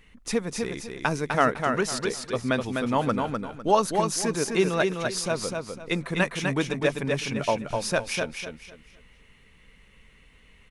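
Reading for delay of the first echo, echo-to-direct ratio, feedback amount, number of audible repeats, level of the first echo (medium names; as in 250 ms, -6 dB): 252 ms, -4.0 dB, 27%, 3, -4.5 dB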